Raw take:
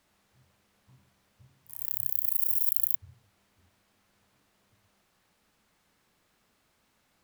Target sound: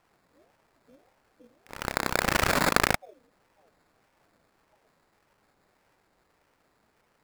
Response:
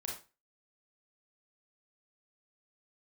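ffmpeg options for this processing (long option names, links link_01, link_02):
-af "acrusher=samples=15:mix=1:aa=0.000001,aeval=exprs='val(0)*sin(2*PI*550*n/s+550*0.35/1.7*sin(2*PI*1.7*n/s))':channel_layout=same,volume=5dB"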